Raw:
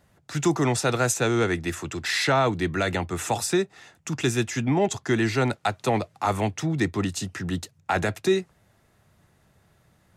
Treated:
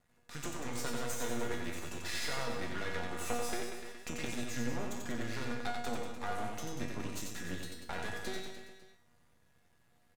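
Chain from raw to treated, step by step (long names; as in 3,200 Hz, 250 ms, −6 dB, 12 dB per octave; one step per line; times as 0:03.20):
0:03.27–0:04.25: octave-band graphic EQ 250/500/2,000 Hz +6/+10/+9 dB
downward compressor, threshold −25 dBFS, peak gain reduction 14 dB
tuned comb filter 240 Hz, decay 0.53 s, harmonics all, mix 90%
half-wave rectification
reverse bouncing-ball delay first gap 90 ms, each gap 1.1×, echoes 5
level +7.5 dB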